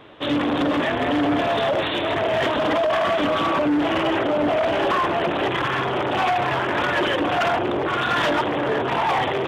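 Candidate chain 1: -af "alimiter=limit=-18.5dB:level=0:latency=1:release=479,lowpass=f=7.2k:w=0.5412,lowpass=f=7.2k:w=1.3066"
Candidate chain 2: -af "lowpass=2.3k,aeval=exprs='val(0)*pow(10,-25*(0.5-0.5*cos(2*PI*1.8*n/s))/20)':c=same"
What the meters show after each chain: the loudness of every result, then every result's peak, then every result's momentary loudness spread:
-24.0, -28.0 LUFS; -17.5, -15.5 dBFS; 2, 8 LU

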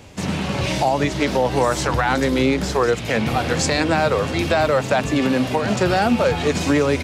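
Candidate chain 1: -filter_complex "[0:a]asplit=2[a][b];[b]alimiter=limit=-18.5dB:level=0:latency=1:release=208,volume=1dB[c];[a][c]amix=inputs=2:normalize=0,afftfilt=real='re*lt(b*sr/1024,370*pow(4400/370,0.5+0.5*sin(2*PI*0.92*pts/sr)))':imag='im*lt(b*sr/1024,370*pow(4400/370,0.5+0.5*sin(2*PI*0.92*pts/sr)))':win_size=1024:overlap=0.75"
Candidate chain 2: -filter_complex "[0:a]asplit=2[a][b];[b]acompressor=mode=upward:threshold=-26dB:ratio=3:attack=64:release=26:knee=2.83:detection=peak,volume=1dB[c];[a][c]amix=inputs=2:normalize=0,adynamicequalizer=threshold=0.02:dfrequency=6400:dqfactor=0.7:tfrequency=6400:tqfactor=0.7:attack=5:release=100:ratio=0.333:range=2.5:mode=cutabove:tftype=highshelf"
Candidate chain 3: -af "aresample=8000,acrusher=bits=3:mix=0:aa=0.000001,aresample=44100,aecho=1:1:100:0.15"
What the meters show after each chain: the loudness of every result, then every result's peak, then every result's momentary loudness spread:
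-18.0, -13.0, -18.5 LUFS; -5.5, -1.5, -6.0 dBFS; 6, 3, 3 LU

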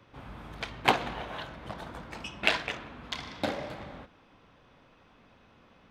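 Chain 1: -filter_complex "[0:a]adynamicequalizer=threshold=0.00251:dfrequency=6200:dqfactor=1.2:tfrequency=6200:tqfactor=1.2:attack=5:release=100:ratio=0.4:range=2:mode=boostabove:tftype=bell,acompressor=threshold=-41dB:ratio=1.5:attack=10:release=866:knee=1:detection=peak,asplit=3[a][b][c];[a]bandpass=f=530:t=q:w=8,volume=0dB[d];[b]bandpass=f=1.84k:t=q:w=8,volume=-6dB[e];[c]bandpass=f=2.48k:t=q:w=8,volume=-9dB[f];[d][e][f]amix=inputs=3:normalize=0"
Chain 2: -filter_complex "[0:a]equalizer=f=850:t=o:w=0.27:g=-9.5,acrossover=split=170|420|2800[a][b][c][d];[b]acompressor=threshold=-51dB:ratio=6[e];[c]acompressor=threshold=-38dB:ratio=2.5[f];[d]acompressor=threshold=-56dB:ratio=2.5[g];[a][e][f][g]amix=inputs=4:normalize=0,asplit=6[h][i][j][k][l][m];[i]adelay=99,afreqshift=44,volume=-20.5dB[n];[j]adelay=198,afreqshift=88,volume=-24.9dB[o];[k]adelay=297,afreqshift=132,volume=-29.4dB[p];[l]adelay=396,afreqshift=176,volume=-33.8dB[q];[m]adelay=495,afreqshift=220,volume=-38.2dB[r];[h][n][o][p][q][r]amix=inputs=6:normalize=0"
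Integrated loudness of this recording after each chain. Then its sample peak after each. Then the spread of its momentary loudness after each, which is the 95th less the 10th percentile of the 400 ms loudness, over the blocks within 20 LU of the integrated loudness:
-51.0, -41.5 LUFS; -22.5, -15.0 dBFS; 15, 23 LU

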